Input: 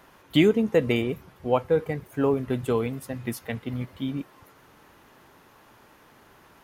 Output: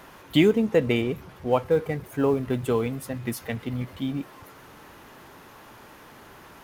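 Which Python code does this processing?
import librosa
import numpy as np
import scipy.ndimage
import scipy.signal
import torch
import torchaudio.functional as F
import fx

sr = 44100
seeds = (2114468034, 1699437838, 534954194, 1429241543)

y = fx.law_mismatch(x, sr, coded='mu')
y = fx.high_shelf(y, sr, hz=9700.0, db=-4.5, at=(0.58, 1.53))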